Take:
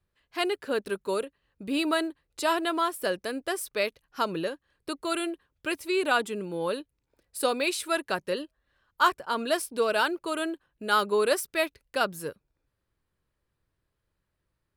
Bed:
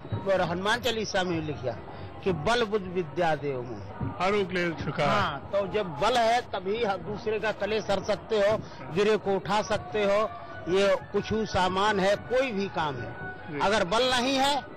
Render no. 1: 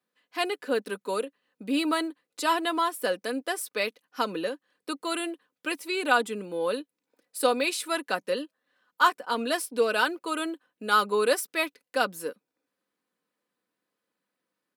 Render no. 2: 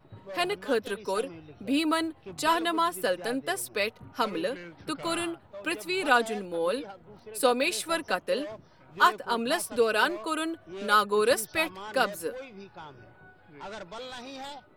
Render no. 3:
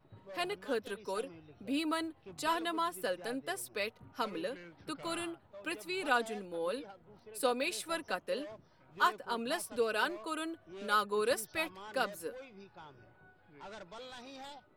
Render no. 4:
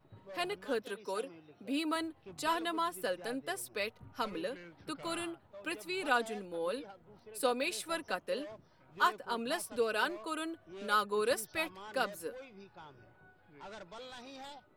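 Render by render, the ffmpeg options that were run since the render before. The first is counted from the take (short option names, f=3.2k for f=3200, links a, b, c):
-af "highpass=f=200:w=0.5412,highpass=f=200:w=1.3066,aecho=1:1:4:0.48"
-filter_complex "[1:a]volume=-16dB[a];[0:a][a]amix=inputs=2:normalize=0"
-af "volume=-8dB"
-filter_complex "[0:a]asettb=1/sr,asplit=3[a][b][c];[a]atrim=end=0.824[d];[b]atrim=start=0.82:end=1.96,asetpts=PTS-STARTPTS,afade=t=in:d=0.004:c=qsin,afade=t=out:st=1.136:d=0.004:c=qsin,highpass=180[e];[c]atrim=start=1.956[f];[d][e]acrossfade=d=0.004:c1=hsin:c2=qsin[g];[g][f]acrossfade=d=0.004:c1=qsin:c2=hsin,asettb=1/sr,asplit=3[h][i][j];[h]atrim=end=3.774[k];[i]atrim=start=3.77:end=4.35,asetpts=PTS-STARTPTS,afade=t=in:d=0.004:c=qsin,afade=t=out:st=0.576:d=0.004:c=qsin,asubboost=boost=10:cutoff=160[l];[j]atrim=start=4.346[m];[k][l]acrossfade=d=0.004:c1=hsin:c2=qsin[n];[n][m]acrossfade=d=0.004:c1=qsin:c2=hsin"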